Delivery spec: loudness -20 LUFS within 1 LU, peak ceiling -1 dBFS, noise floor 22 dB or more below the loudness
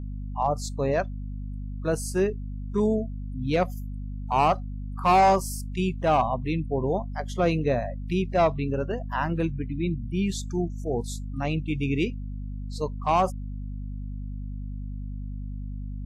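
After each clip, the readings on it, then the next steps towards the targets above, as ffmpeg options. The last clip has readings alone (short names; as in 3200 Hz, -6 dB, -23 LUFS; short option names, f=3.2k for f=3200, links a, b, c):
hum 50 Hz; harmonics up to 250 Hz; hum level -31 dBFS; loudness -27.5 LUFS; peak -12.5 dBFS; loudness target -20.0 LUFS
-> -af "bandreject=f=50:t=h:w=6,bandreject=f=100:t=h:w=6,bandreject=f=150:t=h:w=6,bandreject=f=200:t=h:w=6,bandreject=f=250:t=h:w=6"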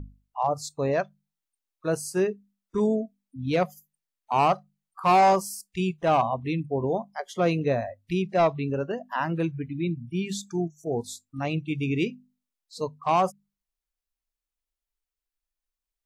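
hum none; loudness -27.0 LUFS; peak -13.5 dBFS; loudness target -20.0 LUFS
-> -af "volume=7dB"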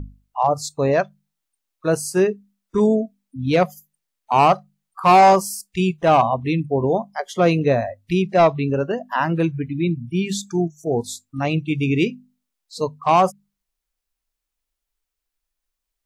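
loudness -20.0 LUFS; peak -6.5 dBFS; noise floor -82 dBFS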